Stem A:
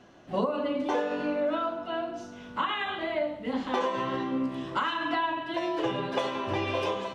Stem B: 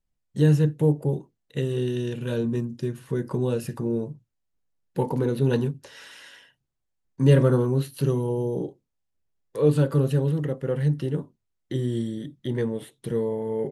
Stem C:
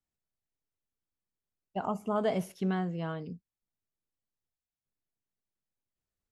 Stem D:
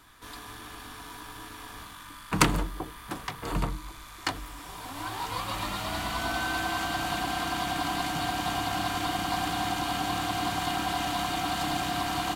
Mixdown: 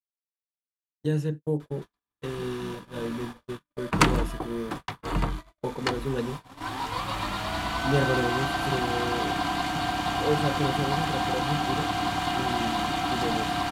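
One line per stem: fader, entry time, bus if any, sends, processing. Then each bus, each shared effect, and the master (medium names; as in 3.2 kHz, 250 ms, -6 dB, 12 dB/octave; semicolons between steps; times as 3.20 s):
0.0 dB, 2.40 s, bus A, no send, reverb removal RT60 1.7 s; compression 2.5:1, threshold -34 dBFS, peak gain reduction 8 dB; feedback comb 51 Hz, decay 1.5 s, harmonics all, mix 60%
-5.5 dB, 0.65 s, no bus, no send, high-pass 160 Hz 12 dB/octave; treble shelf 6.5 kHz +8 dB
-1.5 dB, 0.00 s, bus A, no send, compression, threshold -33 dBFS, peak gain reduction 9 dB; sawtooth tremolo in dB decaying 0.84 Hz, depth 26 dB
+2.5 dB, 1.60 s, no bus, no send, none
bus A: 0.0 dB, resonant low shelf 210 Hz +10 dB, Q 1.5; peak limiter -36 dBFS, peak gain reduction 10.5 dB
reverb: none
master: gate -33 dBFS, range -55 dB; treble shelf 8.1 kHz -11.5 dB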